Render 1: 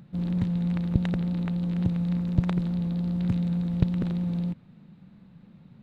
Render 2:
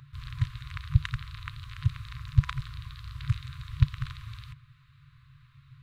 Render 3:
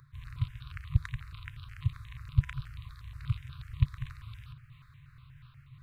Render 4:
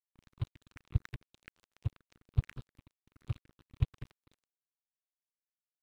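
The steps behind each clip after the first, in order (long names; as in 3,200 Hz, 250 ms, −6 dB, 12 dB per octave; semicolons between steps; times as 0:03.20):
brick-wall band-stop 140–1,000 Hz; level +4.5 dB
reversed playback; upward compression, threshold −40 dBFS; reversed playback; step-sequenced phaser 8.3 Hz 780–2,000 Hz; level −3 dB
dead-zone distortion −38 dBFS; level −3.5 dB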